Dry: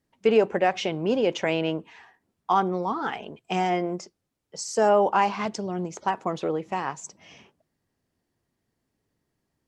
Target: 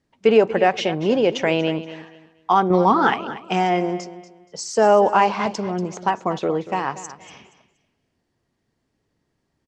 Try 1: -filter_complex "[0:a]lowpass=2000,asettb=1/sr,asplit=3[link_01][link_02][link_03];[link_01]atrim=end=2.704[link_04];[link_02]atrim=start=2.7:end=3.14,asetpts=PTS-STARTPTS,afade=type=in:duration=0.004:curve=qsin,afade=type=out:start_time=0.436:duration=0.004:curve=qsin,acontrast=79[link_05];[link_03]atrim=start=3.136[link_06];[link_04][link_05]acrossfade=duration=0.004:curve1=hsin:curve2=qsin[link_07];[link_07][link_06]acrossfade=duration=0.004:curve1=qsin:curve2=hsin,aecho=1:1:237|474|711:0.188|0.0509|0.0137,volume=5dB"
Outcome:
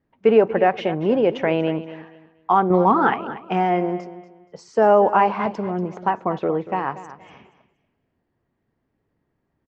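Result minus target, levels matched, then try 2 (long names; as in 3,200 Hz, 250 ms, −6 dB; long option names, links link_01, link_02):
8,000 Hz band −19.0 dB
-filter_complex "[0:a]lowpass=7100,asettb=1/sr,asplit=3[link_01][link_02][link_03];[link_01]atrim=end=2.704[link_04];[link_02]atrim=start=2.7:end=3.14,asetpts=PTS-STARTPTS,afade=type=in:duration=0.004:curve=qsin,afade=type=out:start_time=0.436:duration=0.004:curve=qsin,acontrast=79[link_05];[link_03]atrim=start=3.136[link_06];[link_04][link_05]acrossfade=duration=0.004:curve1=hsin:curve2=qsin[link_07];[link_07][link_06]acrossfade=duration=0.004:curve1=qsin:curve2=hsin,aecho=1:1:237|474|711:0.188|0.0509|0.0137,volume=5dB"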